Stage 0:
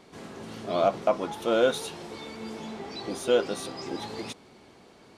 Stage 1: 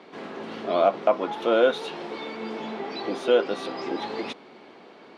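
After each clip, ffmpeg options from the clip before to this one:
ffmpeg -i in.wav -filter_complex "[0:a]highpass=frequency=120:poles=1,acrossover=split=190 4100:gain=0.126 1 0.0794[link_01][link_02][link_03];[link_01][link_02][link_03]amix=inputs=3:normalize=0,asplit=2[link_04][link_05];[link_05]acompressor=threshold=-33dB:ratio=6,volume=-2dB[link_06];[link_04][link_06]amix=inputs=2:normalize=0,volume=2dB" out.wav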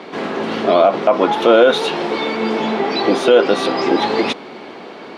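ffmpeg -i in.wav -af "alimiter=level_in=15.5dB:limit=-1dB:release=50:level=0:latency=1,volume=-1dB" out.wav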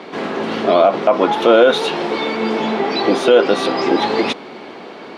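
ffmpeg -i in.wav -af anull out.wav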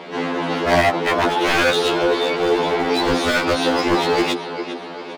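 ffmpeg -i in.wav -af "aecho=1:1:402|804|1206|1608|2010:0.224|0.103|0.0474|0.0218|0.01,aeval=exprs='0.251*(abs(mod(val(0)/0.251+3,4)-2)-1)':channel_layout=same,afftfilt=real='re*2*eq(mod(b,4),0)':imag='im*2*eq(mod(b,4),0)':win_size=2048:overlap=0.75,volume=2.5dB" out.wav

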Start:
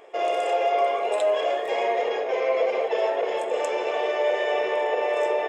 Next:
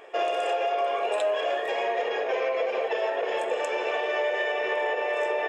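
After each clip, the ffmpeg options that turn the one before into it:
ffmpeg -i in.wav -af "equalizer=frequency=2000:width_type=o:width=1:gain=9,bandreject=frequency=2100:width=6.2,alimiter=limit=-18dB:level=0:latency=1:release=241" out.wav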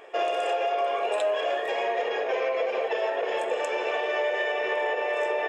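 ffmpeg -i in.wav -af anull out.wav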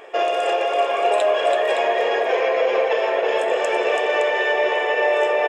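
ffmpeg -i in.wav -af "aecho=1:1:332|566:0.501|0.398,volume=6dB" out.wav

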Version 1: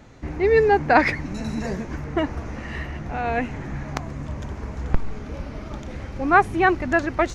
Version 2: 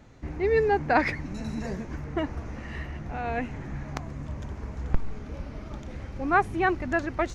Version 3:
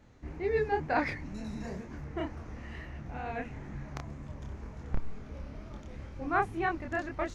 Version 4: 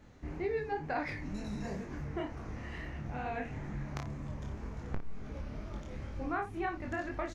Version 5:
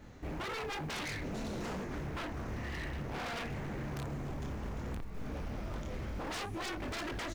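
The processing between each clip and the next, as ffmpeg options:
ffmpeg -i in.wav -af "lowshelf=frequency=200:gain=3,volume=-6.5dB" out.wav
ffmpeg -i in.wav -af "flanger=delay=22.5:depth=7.4:speed=2.1,volume=-3.5dB" out.wav
ffmpeg -i in.wav -filter_complex "[0:a]acompressor=threshold=-35dB:ratio=4,asplit=2[link_01][link_02];[link_02]aecho=0:1:20|57:0.376|0.282[link_03];[link_01][link_03]amix=inputs=2:normalize=0,volume=1dB" out.wav
ffmpeg -i in.wav -af "aeval=exprs='0.0119*(abs(mod(val(0)/0.0119+3,4)-2)-1)':channel_layout=same,acrusher=bits=8:mode=log:mix=0:aa=0.000001,volume=4.5dB" out.wav

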